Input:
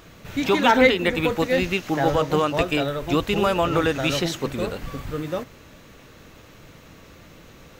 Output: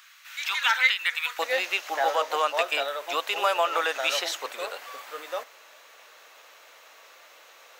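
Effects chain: HPF 1300 Hz 24 dB/oct, from 1.39 s 610 Hz

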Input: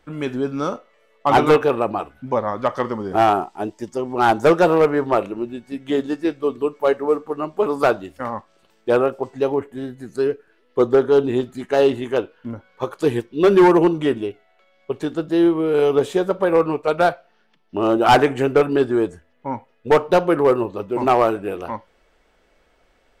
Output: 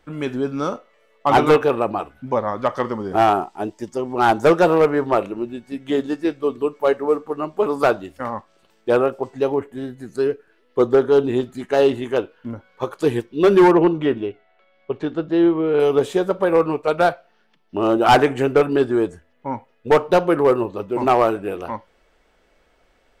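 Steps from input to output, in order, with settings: 13.71–15.8 LPF 3500 Hz 12 dB/oct

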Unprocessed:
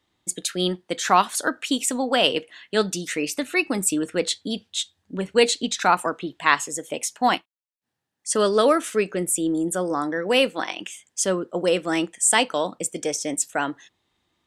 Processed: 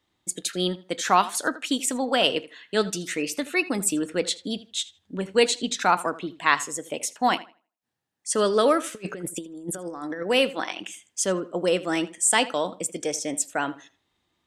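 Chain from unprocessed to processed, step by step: 8.95–10.23 negative-ratio compressor -30 dBFS, ratio -0.5; tape echo 80 ms, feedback 24%, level -16 dB, low-pass 4000 Hz; gain -2 dB

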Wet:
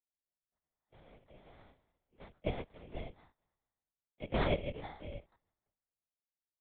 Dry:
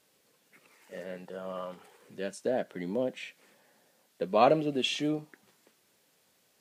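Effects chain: frequency quantiser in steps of 3 st; HPF 360 Hz 6 dB/oct; octave resonator G#, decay 0.13 s; sample-and-hold 16×; ring modulator 150 Hz; LPC vocoder at 8 kHz whisper; three-band expander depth 70%; gain +6.5 dB

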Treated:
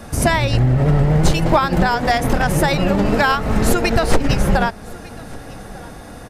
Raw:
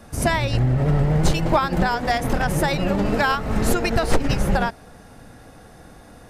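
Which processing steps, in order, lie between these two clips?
in parallel at +2.5 dB: compressor, threshold -30 dBFS, peak gain reduction 17 dB; on the sum: echo 1.199 s -22.5 dB; gain +2 dB

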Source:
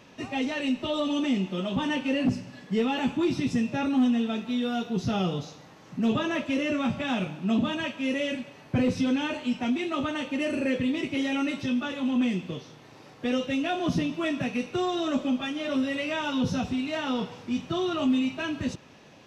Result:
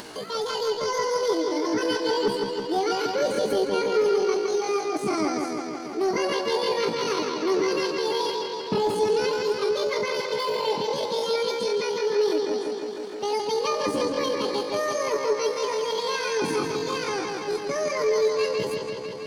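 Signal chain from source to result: analogue delay 0.162 s, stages 4096, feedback 73%, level -4 dB; pitch shift +9 st; upward compressor, threshold -30 dBFS

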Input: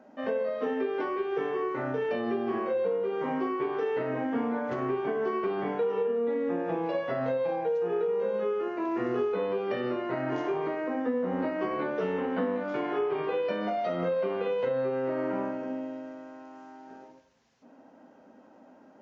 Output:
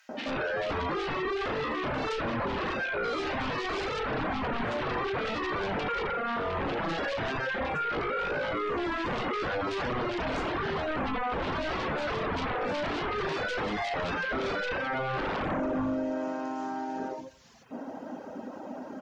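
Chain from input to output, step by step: 2.93–4 small resonant body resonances 1500/3200 Hz, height 13 dB, ringing for 45 ms; sine folder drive 13 dB, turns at -19 dBFS; reverb removal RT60 0.76 s; bands offset in time highs, lows 90 ms, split 2100 Hz; limiter -25 dBFS, peak gain reduction 11 dB

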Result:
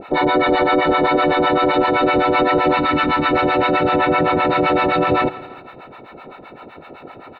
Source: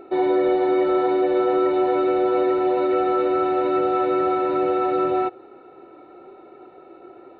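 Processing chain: spectral limiter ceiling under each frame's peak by 20 dB; 2.77–3.33 band shelf 530 Hz -8.5 dB 1.2 oct; harmonic tremolo 7.8 Hz, depth 100%, crossover 650 Hz; 3.89–4.45 air absorption 120 m; on a send: feedback echo 0.164 s, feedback 51%, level -20 dB; on the sum: maximiser +17.5 dB; gain -6.5 dB

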